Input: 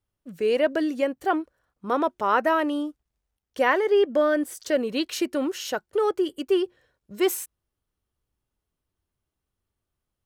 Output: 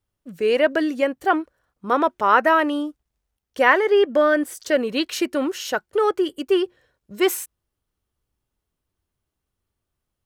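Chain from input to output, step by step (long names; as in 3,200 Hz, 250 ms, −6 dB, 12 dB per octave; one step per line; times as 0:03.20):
dynamic equaliser 1,700 Hz, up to +5 dB, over −36 dBFS, Q 0.73
level +2.5 dB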